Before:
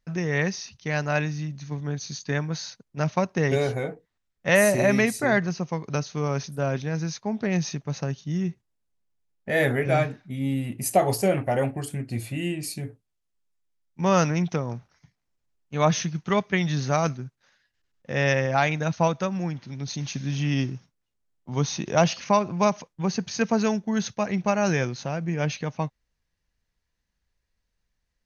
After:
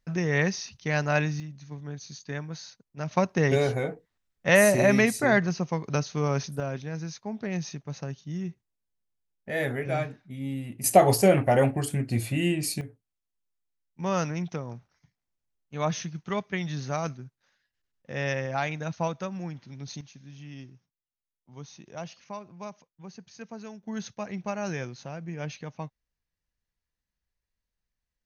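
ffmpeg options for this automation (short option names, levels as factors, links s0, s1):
-af "asetnsamples=n=441:p=0,asendcmd='1.4 volume volume -8dB;3.11 volume volume 0dB;6.6 volume volume -6.5dB;10.84 volume volume 3dB;12.81 volume volume -7dB;20.01 volume volume -18.5dB;23.83 volume volume -9dB',volume=1"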